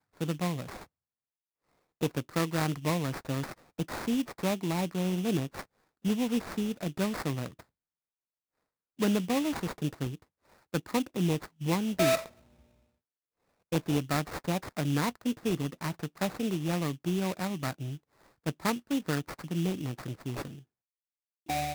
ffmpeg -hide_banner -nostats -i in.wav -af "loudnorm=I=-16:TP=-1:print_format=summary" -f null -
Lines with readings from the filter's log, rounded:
Input Integrated:    -32.3 LUFS
Input True Peak:     -13.4 dBTP
Input LRA:             3.5 LU
Input Threshold:     -42.9 LUFS